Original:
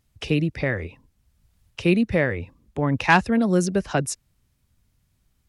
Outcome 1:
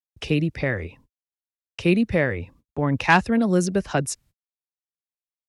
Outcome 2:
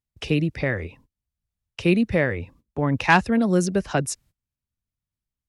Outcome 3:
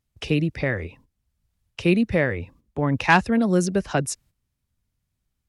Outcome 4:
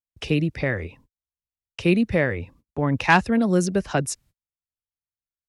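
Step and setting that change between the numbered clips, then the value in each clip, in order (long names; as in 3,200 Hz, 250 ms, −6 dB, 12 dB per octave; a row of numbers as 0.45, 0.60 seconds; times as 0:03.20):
noise gate, range: −58, −22, −10, −40 decibels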